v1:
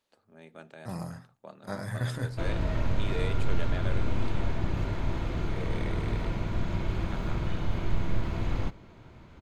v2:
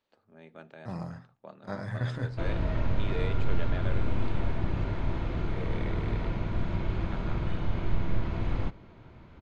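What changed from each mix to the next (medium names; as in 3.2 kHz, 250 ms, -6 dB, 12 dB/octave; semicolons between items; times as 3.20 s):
master: add distance through air 130 m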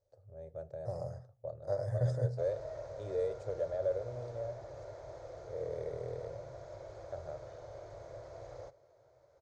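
first voice: remove high-pass 300 Hz 12 dB/octave; background: add high-pass 1.3 kHz 6 dB/octave; master: add FFT filter 130 Hz 0 dB, 210 Hz -28 dB, 560 Hz +10 dB, 950 Hz -12 dB, 1.9 kHz -16 dB, 2.8 kHz -27 dB, 5.7 kHz 0 dB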